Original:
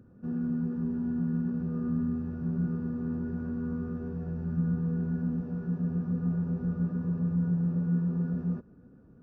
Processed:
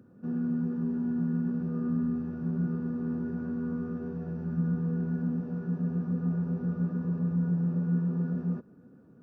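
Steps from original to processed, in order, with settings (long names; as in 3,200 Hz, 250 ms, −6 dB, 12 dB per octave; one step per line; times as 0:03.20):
high-pass filter 140 Hz 12 dB per octave
level +1.5 dB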